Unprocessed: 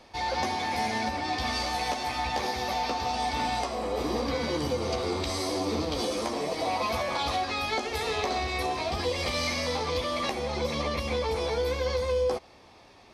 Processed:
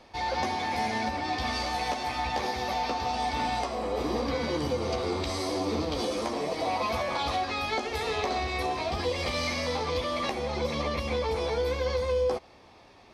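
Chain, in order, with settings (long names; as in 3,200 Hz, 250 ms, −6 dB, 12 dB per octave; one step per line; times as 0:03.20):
high-shelf EQ 5,400 Hz −5.5 dB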